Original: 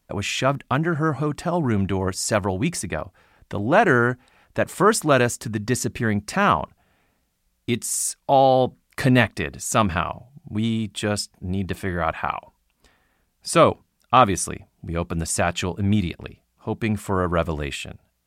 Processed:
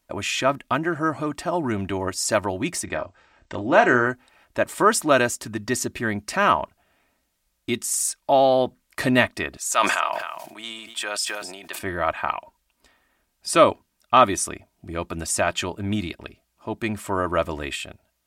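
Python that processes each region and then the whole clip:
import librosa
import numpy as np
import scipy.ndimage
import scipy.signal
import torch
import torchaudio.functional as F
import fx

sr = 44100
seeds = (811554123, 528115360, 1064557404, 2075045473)

y = fx.chain(x, sr, fx.steep_lowpass(hz=8200.0, slope=96),
    fx.doubler(ms=32.0, db=-9.5), at=(2.84, 4.07))
y = fx.chain(y, sr, fx.highpass(hz=740.0, slope=12),
    fx.echo_single(ms=264, db=-20.5),
    fx.sustainer(db_per_s=39.0), at=(9.57, 11.79))
y = fx.low_shelf(y, sr, hz=250.0, db=-7.5)
y = y + 0.38 * np.pad(y, (int(3.2 * sr / 1000.0), 0))[:len(y)]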